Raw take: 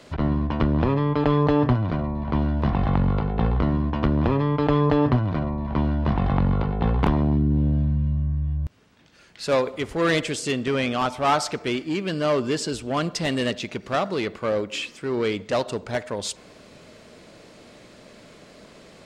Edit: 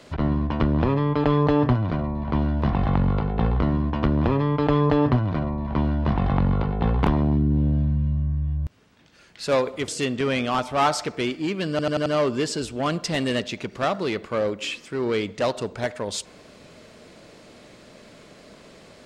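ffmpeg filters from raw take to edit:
-filter_complex "[0:a]asplit=6[a][b][c][d][e][f];[a]atrim=end=9.882[g];[b]atrim=start=10.348:end=12.262[h];[c]atrim=start=12.168:end=12.262[i];[d]atrim=start=12.168:end=12.262[j];[e]atrim=start=12.168:end=12.262[k];[f]atrim=start=12.168[l];[g][h]acrossfade=d=0.004:c1=hsin:c2=hsin[m];[m][i]acrossfade=d=0.004:c1=hsin:c2=hsin[n];[n][j]acrossfade=d=0.004:c1=hsin:c2=hsin[o];[o][k]acrossfade=d=0.004:c1=hsin:c2=hsin[p];[p][l]acrossfade=d=0.004:c1=hsin:c2=hsin"

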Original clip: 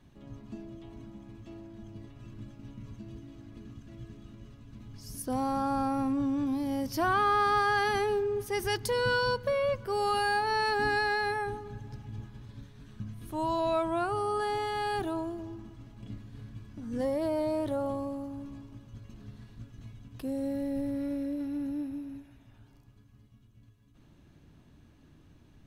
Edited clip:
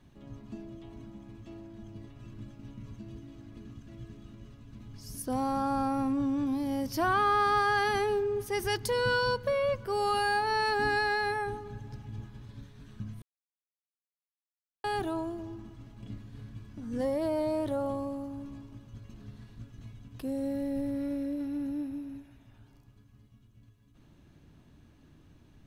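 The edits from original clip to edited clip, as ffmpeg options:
-filter_complex "[0:a]asplit=3[a][b][c];[a]atrim=end=13.22,asetpts=PTS-STARTPTS,afade=t=out:st=13.216:d=0.004:c=hsin[d];[b]atrim=start=13.22:end=14.84,asetpts=PTS-STARTPTS,volume=0[e];[c]atrim=start=14.84,asetpts=PTS-STARTPTS,afade=t=in:d=0.004:c=hsin[f];[d][e][f]concat=n=3:v=0:a=1"

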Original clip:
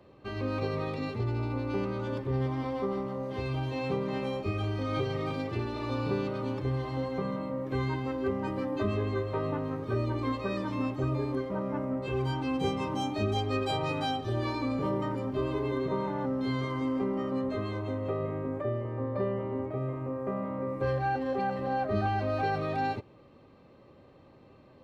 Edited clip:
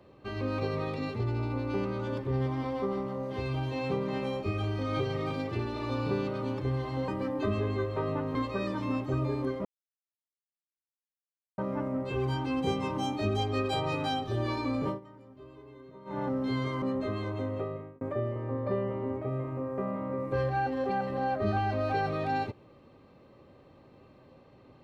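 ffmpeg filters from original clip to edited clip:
-filter_complex "[0:a]asplit=8[a][b][c][d][e][f][g][h];[a]atrim=end=7.082[i];[b]atrim=start=8.448:end=9.722[j];[c]atrim=start=10.248:end=11.55,asetpts=PTS-STARTPTS,afade=t=out:st=1.298:d=0.004:c=hsin,apad=pad_dur=1.93[k];[d]atrim=start=11.55:end=14.97,asetpts=PTS-STARTPTS,afade=t=in:d=0.004:c=hsin,afade=t=out:st=3.29:d=0.13:silence=0.105925[l];[e]atrim=start=14.97:end=16.02,asetpts=PTS-STARTPTS,volume=-19.5dB[m];[f]atrim=start=16.02:end=16.792,asetpts=PTS-STARTPTS,afade=t=in:d=0.13:silence=0.105925[n];[g]atrim=start=17.308:end=18.5,asetpts=PTS-STARTPTS,afade=t=out:st=0.692:d=0.5[o];[h]atrim=start=18.5,asetpts=PTS-STARTPTS,afade=t=in:d=0.004:c=hsin[p];[i][j]acrossfade=d=0.004:c1=hsin:c2=hsin[q];[k][l][m][n]concat=n=4:v=0:a=1[r];[q][r]acrossfade=d=0.004:c1=hsin:c2=hsin[s];[o][p]concat=n=2:v=0:a=1[t];[s][t]acrossfade=d=0.004:c1=hsin:c2=hsin"

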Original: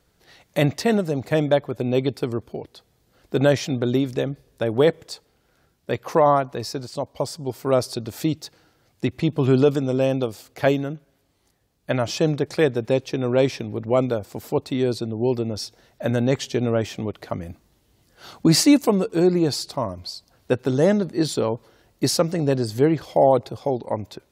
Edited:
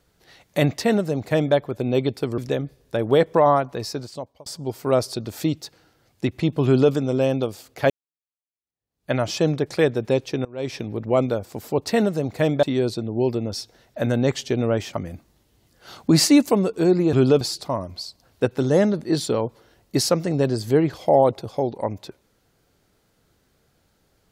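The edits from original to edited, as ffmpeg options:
-filter_complex "[0:a]asplit=11[a][b][c][d][e][f][g][h][i][j][k];[a]atrim=end=2.382[l];[b]atrim=start=4.048:end=5.012[m];[c]atrim=start=6.138:end=7.26,asetpts=PTS-STARTPTS,afade=t=out:st=0.642:d=0.48[n];[d]atrim=start=7.26:end=10.7,asetpts=PTS-STARTPTS,afade=t=in:d=0.004:c=hsin,afade=t=out:st=3.436:d=0.004:c=hsin[o];[e]atrim=start=10.7:end=13.25,asetpts=PTS-STARTPTS,afade=t=in:d=1.21:c=exp,afade=t=out:st=2.546:d=0.004:c=hsin:silence=0.0630957[p];[f]atrim=start=13.25:end=14.672,asetpts=PTS-STARTPTS,afade=t=in:d=0.32:c=qua:silence=0.0630957[q];[g]atrim=start=0.788:end=1.552[r];[h]atrim=start=14.668:end=16.972[s];[i]atrim=start=17.288:end=19.492[t];[j]atrim=start=9.448:end=9.732[u];[k]atrim=start=19.488[v];[l][m]acrossfade=d=0.004:c1=hsin:c2=hsin[w];[n][o][p][q]concat=n=4:v=0:a=1[x];[w][x]acrossfade=d=0.004:c1=hsin:c2=hsin[y];[y][r]acrossfade=d=0.004:c1=hsin:c2=hsin[z];[z][s]acrossfade=d=0.004:c1=hsin:c2=hsin[aa];[aa][t]acrossfade=d=0.004:c1=hsin:c2=hsin[ab];[ab][u]acrossfade=d=0.004:c1=hsin:c2=hsin[ac];[ac][v]acrossfade=d=0.004:c1=hsin:c2=hsin"

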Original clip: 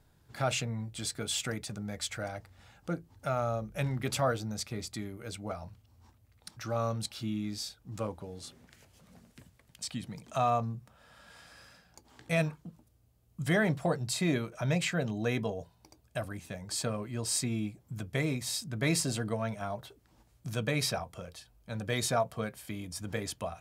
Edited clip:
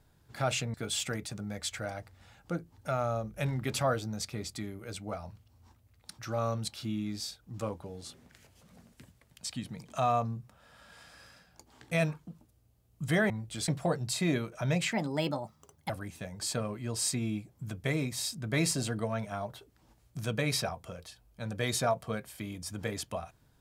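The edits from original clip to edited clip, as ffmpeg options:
-filter_complex "[0:a]asplit=6[a][b][c][d][e][f];[a]atrim=end=0.742[g];[b]atrim=start=1.118:end=13.682[h];[c]atrim=start=0.738:end=1.122[i];[d]atrim=start=13.678:end=14.924[j];[e]atrim=start=14.92:end=16.19,asetpts=PTS-STARTPTS,asetrate=57330,aresample=44100,atrim=end_sample=43082,asetpts=PTS-STARTPTS[k];[f]atrim=start=16.186[l];[g][h]acrossfade=d=0.004:c1=hsin:c2=hsin[m];[m][i]acrossfade=d=0.004:c1=hsin:c2=hsin[n];[n][j]acrossfade=d=0.004:c1=hsin:c2=hsin[o];[o][k]acrossfade=d=0.004:c1=hsin:c2=hsin[p];[p][l]acrossfade=d=0.004:c1=hsin:c2=hsin"

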